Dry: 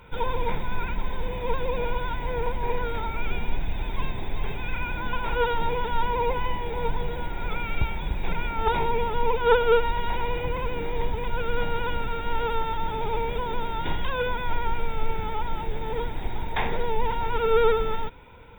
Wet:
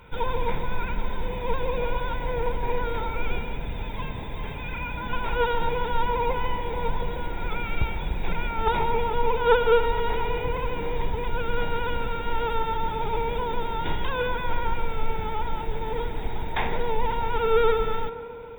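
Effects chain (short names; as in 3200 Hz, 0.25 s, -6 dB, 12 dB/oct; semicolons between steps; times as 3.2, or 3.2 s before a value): 3.41–5.1 notch comb 370 Hz; on a send: tape echo 0.142 s, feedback 87%, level -10 dB, low-pass 1500 Hz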